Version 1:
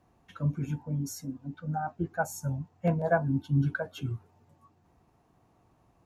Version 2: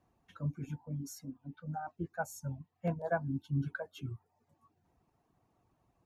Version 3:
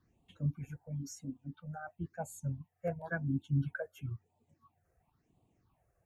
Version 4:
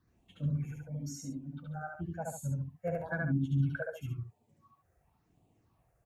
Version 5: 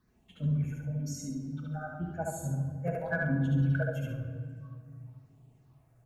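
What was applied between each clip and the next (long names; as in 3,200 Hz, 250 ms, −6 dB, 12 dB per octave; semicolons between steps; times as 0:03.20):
reverb reduction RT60 0.61 s; level −7 dB
all-pass phaser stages 6, 0.97 Hz, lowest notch 240–1,600 Hz; level +2 dB
loudspeakers that aren't time-aligned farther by 25 metres −1 dB, 48 metres −9 dB
rectangular room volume 3,400 cubic metres, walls mixed, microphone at 1.4 metres; in parallel at −12 dB: asymmetric clip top −28 dBFS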